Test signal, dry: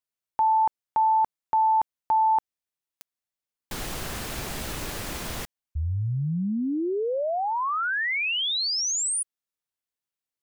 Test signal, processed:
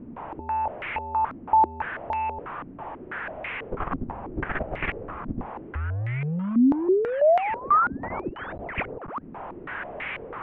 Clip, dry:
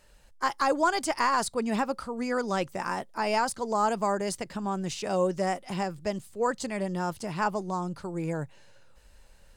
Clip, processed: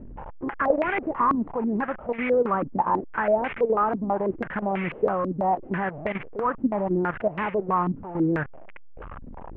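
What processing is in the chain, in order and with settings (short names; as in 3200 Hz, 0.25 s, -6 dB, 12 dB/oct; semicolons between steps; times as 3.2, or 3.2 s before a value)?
delta modulation 16 kbps, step -32.5 dBFS; level quantiser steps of 11 dB; stepped low-pass 6.1 Hz 260–2200 Hz; gain +5 dB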